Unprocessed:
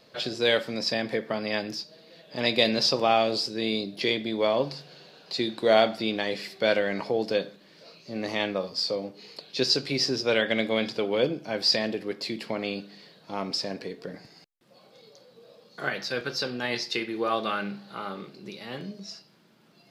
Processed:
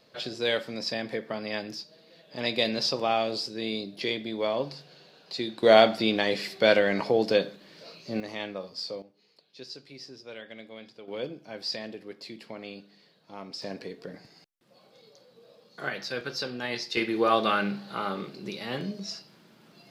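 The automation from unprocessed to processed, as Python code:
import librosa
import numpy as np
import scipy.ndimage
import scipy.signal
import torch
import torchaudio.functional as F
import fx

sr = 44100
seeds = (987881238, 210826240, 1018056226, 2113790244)

y = fx.gain(x, sr, db=fx.steps((0.0, -4.0), (5.63, 3.0), (8.2, -7.5), (9.02, -19.0), (11.08, -10.0), (13.62, -3.0), (16.97, 4.0)))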